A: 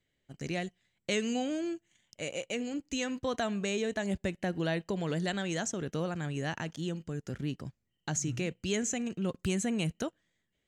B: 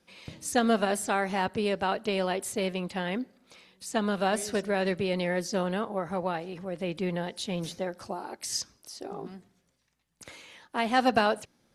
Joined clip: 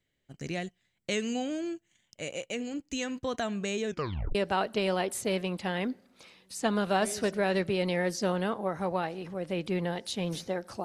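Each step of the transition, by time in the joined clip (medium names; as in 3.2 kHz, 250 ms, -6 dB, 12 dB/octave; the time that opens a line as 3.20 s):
A
3.86 s: tape stop 0.49 s
4.35 s: go over to B from 1.66 s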